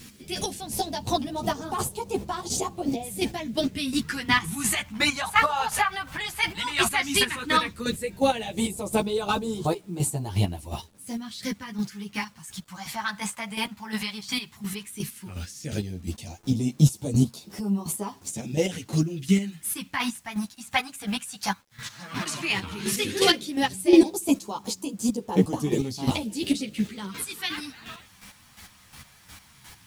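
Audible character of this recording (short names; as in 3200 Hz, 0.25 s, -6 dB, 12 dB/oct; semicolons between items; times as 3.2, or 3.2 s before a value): phasing stages 2, 0.13 Hz, lowest notch 360–1800 Hz; a quantiser's noise floor 10-bit, dither none; chopped level 2.8 Hz, depth 65%, duty 25%; a shimmering, thickened sound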